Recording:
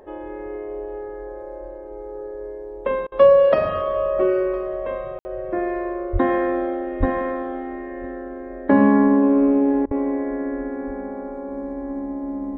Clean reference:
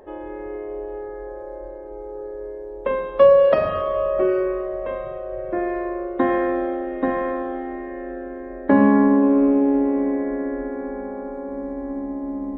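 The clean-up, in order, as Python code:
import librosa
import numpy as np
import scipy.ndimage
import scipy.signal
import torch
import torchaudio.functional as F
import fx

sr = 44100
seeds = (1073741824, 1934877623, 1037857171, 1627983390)

y = fx.highpass(x, sr, hz=140.0, slope=24, at=(6.12, 6.24), fade=0.02)
y = fx.highpass(y, sr, hz=140.0, slope=24, at=(6.99, 7.11), fade=0.02)
y = fx.highpass(y, sr, hz=140.0, slope=24, at=(9.85, 9.97), fade=0.02)
y = fx.fix_ambience(y, sr, seeds[0], print_start_s=1.49, print_end_s=1.99, start_s=5.19, end_s=5.25)
y = fx.fix_interpolate(y, sr, at_s=(3.07, 9.86), length_ms=48.0)
y = fx.fix_echo_inverse(y, sr, delay_ms=1011, level_db=-21.5)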